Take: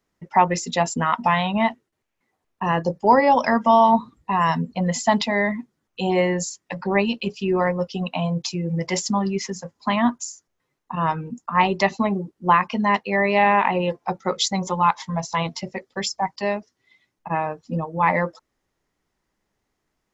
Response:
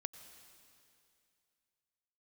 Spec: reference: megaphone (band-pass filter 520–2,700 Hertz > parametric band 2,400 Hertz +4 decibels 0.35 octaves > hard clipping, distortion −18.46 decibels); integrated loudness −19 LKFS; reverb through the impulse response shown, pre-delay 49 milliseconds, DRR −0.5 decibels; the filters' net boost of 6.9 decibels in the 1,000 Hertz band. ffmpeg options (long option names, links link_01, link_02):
-filter_complex "[0:a]equalizer=frequency=1000:width_type=o:gain=8.5,asplit=2[link_01][link_02];[1:a]atrim=start_sample=2205,adelay=49[link_03];[link_02][link_03]afir=irnorm=-1:irlink=0,volume=3dB[link_04];[link_01][link_04]amix=inputs=2:normalize=0,highpass=520,lowpass=2700,equalizer=frequency=2400:width_type=o:width=0.35:gain=4,asoftclip=type=hard:threshold=-2dB,volume=-4dB"